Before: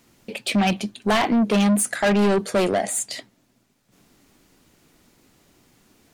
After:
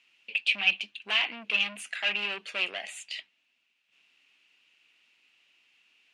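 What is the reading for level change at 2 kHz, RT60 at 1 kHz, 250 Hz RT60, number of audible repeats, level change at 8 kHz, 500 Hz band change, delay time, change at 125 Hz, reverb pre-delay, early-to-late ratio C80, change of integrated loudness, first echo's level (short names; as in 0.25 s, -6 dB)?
+0.5 dB, none, none, none, -19.5 dB, -22.0 dB, none, under -30 dB, none, none, -7.5 dB, none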